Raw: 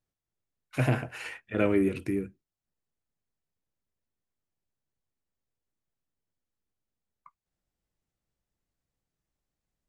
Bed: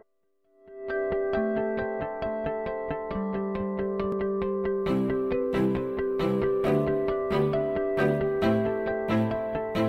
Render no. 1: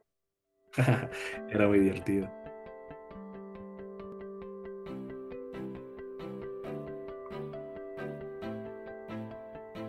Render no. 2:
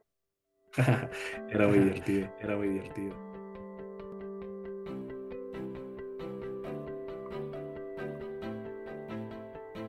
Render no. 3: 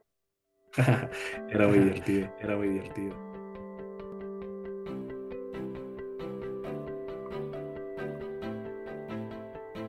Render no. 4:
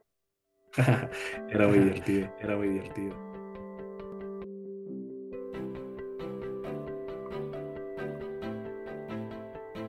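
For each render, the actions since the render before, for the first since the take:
add bed -15.5 dB
echo 0.891 s -7.5 dB
gain +2 dB
4.44–5.33 Butterworth band-pass 260 Hz, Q 1.1

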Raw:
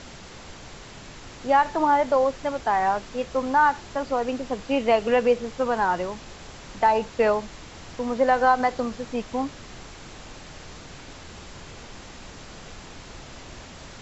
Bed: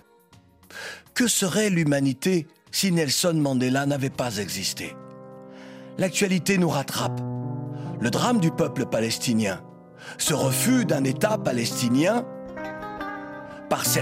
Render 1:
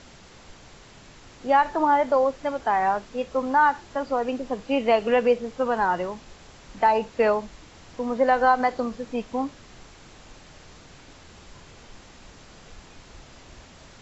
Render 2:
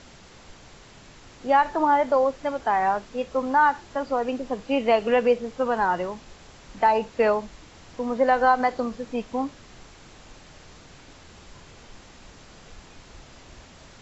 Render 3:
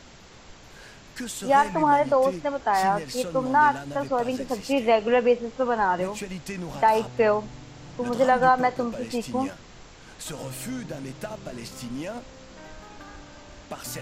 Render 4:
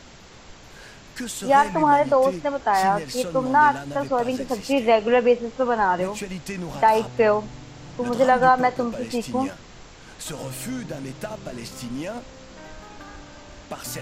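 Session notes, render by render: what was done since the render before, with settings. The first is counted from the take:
noise print and reduce 6 dB
nothing audible
add bed -13 dB
gain +2.5 dB

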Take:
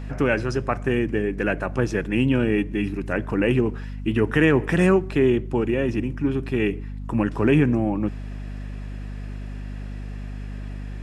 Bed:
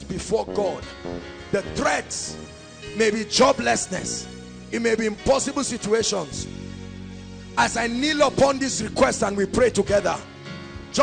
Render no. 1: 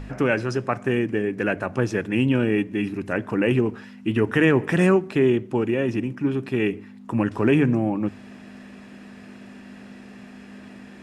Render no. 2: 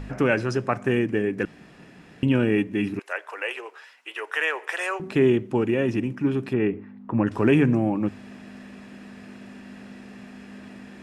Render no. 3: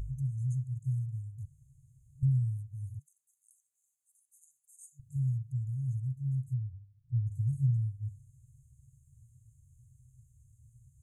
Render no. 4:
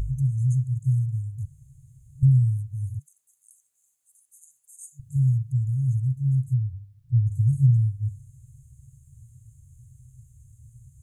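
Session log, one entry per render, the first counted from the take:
de-hum 50 Hz, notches 3
1.45–2.23 room tone; 2.99–5 Bessel high-pass 850 Hz, order 8; 6.53–7.27 LPF 1700 Hz
resonant high shelf 4300 Hz -6.5 dB, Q 3; FFT band-reject 150–6200 Hz
gain +10 dB

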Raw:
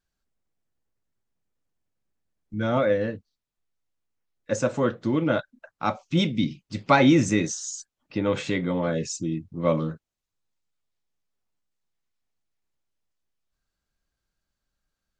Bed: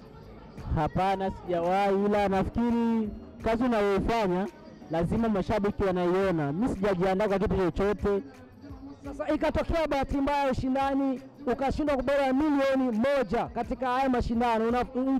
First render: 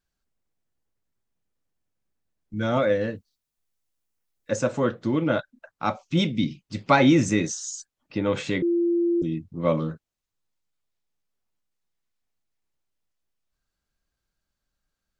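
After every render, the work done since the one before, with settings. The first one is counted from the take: 2.56–4.51 high shelf 5800 Hz +10 dB; 8.62–9.22 bleep 343 Hz -19 dBFS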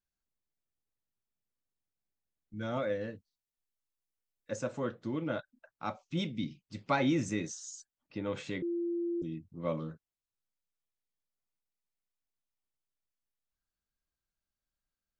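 gain -11.5 dB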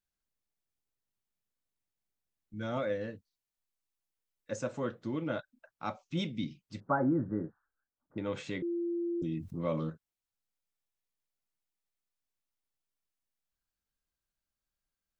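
6.8–8.18 steep low-pass 1600 Hz 72 dB/oct; 9.22–9.9 fast leveller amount 50%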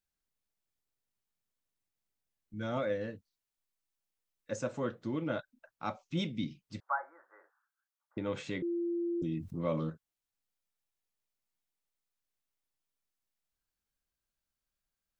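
6.8–8.17 inverse Chebyshev high-pass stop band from 240 Hz, stop band 60 dB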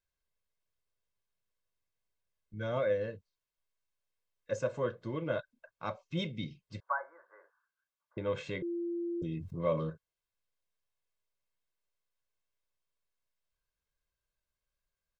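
high shelf 6200 Hz -10.5 dB; comb 1.9 ms, depth 58%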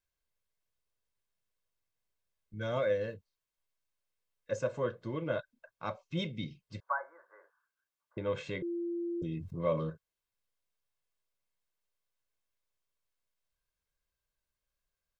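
2.61–3.14 high shelf 4600 Hz +9.5 dB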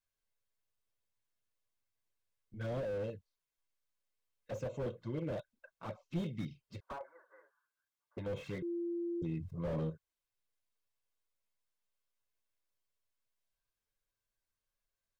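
envelope flanger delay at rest 9.1 ms, full sweep at -31.5 dBFS; slew limiter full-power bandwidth 7.9 Hz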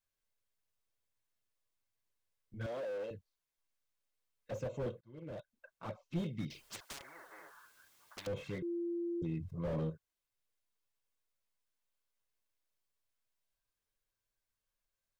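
2.66–3.11 HPF 420 Hz; 5.01–5.68 fade in; 6.5–8.27 spectral compressor 10:1

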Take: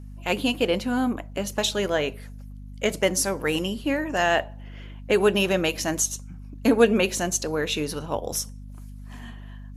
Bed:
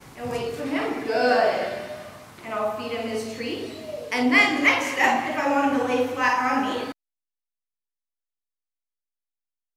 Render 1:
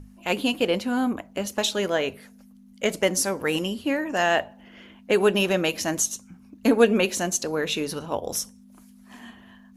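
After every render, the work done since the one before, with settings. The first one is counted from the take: notches 50/100/150 Hz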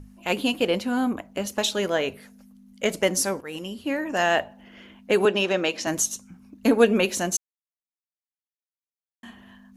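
3.41–4.09 fade in, from -15.5 dB; 5.25–5.87 three-band isolator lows -16 dB, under 200 Hz, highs -24 dB, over 7600 Hz; 7.37–9.23 mute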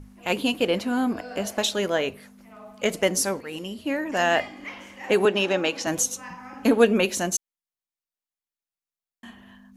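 add bed -19.5 dB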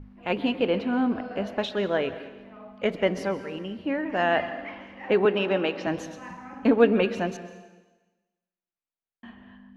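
air absorption 340 m; plate-style reverb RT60 1.2 s, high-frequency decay 1×, pre-delay 0.115 s, DRR 12 dB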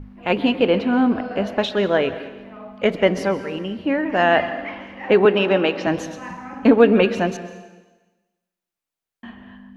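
gain +7 dB; limiter -2 dBFS, peak gain reduction 2.5 dB

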